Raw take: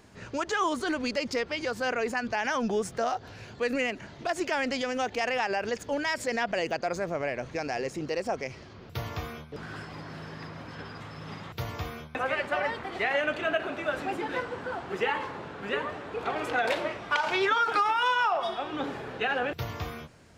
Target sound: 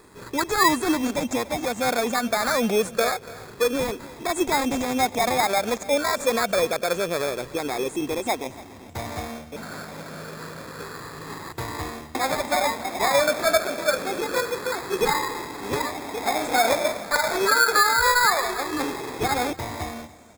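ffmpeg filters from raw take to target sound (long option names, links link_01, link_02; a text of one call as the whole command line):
ffmpeg -i in.wav -filter_complex "[0:a]afftfilt=real='re*pow(10,9/40*sin(2*PI*(0.63*log(max(b,1)*sr/1024/100)/log(2)-(-0.27)*(pts-256)/sr)))':imag='im*pow(10,9/40*sin(2*PI*(0.63*log(max(b,1)*sr/1024/100)/log(2)-(-0.27)*(pts-256)/sr)))':win_size=1024:overlap=0.75,equalizer=frequency=125:width_type=o:width=1:gain=-4,equalizer=frequency=250:width_type=o:width=1:gain=5,equalizer=frequency=500:width_type=o:width=1:gain=4,equalizer=frequency=1000:width_type=o:width=1:gain=6,equalizer=frequency=8000:width_type=o:width=1:gain=10,acrossover=split=6200[link_01][link_02];[link_01]acrusher=samples=15:mix=1:aa=0.000001[link_03];[link_03][link_02]amix=inputs=2:normalize=0,aecho=1:1:287:0.106" out.wav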